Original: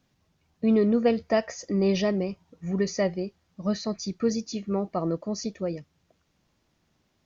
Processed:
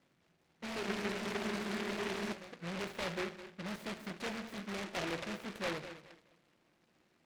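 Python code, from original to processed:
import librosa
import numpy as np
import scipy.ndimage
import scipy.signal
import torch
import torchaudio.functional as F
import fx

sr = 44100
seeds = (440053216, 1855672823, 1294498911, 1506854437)

y = fx.tube_stage(x, sr, drive_db=39.0, bias=0.35)
y = fx.bandpass_q(y, sr, hz=590.0, q=0.88)
y = fx.air_absorb(y, sr, metres=170.0)
y = fx.echo_feedback(y, sr, ms=210, feedback_pct=26, wet_db=-13)
y = fx.room_shoebox(y, sr, seeds[0], volume_m3=930.0, walls='furnished', distance_m=0.87)
y = fx.spec_freeze(y, sr, seeds[1], at_s=0.83, hold_s=1.51)
y = fx.noise_mod_delay(y, sr, seeds[2], noise_hz=1500.0, depth_ms=0.26)
y = F.gain(torch.from_numpy(y), 5.0).numpy()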